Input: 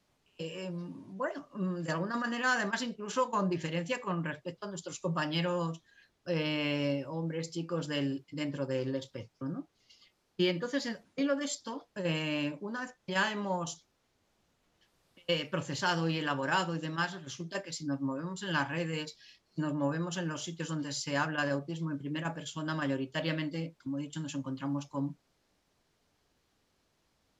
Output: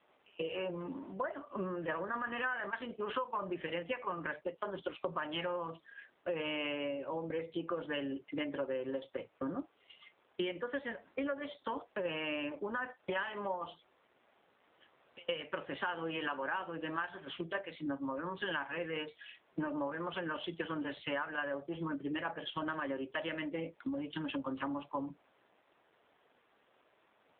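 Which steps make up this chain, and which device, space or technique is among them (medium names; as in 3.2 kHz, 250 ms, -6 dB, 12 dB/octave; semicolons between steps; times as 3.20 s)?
voicemail (band-pass 400–2800 Hz; compression 8:1, threshold -45 dBFS, peak gain reduction 19.5 dB; trim +11.5 dB; AMR-NB 7.4 kbps 8 kHz)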